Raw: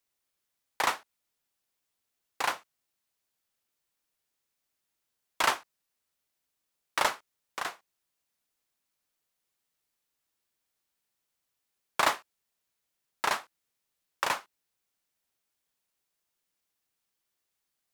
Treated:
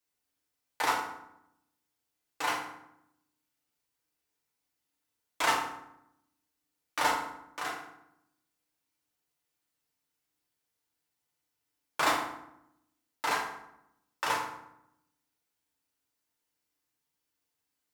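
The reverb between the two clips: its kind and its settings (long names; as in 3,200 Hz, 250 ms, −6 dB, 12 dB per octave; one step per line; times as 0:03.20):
feedback delay network reverb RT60 0.8 s, low-frequency decay 1.4×, high-frequency decay 0.65×, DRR −5 dB
level −6.5 dB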